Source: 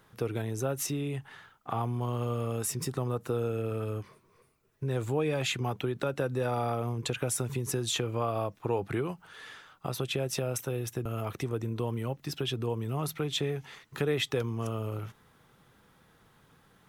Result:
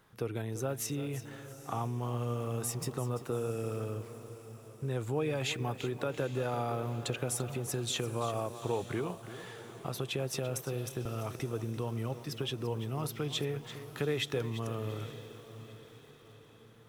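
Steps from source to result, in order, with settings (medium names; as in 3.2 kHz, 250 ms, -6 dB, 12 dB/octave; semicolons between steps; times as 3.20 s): on a send: echo that smears into a reverb 854 ms, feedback 47%, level -15 dB; on the sum: bit-crushed delay 340 ms, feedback 35%, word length 8-bit, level -12.5 dB; trim -3.5 dB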